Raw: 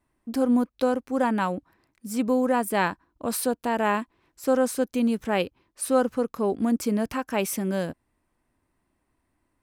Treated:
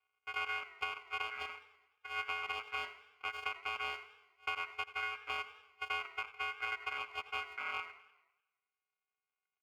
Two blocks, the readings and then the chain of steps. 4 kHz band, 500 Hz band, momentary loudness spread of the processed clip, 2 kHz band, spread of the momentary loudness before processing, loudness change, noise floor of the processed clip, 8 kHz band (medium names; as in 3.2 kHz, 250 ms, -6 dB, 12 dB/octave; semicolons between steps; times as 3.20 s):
-3.0 dB, -28.0 dB, 8 LU, -3.5 dB, 9 LU, -14.0 dB, under -85 dBFS, -28.5 dB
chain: sorted samples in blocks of 128 samples; high-pass 520 Hz 12 dB/octave; reverb removal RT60 2 s; boxcar filter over 22 samples; compression, threshold -34 dBFS, peak gain reduction 11.5 dB; ring modulator 1.8 kHz; on a send: feedback delay 83 ms, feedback 55%, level -17.5 dB; on the sum: modulated delay 99 ms, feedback 54%, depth 183 cents, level -20 dB; trim +2 dB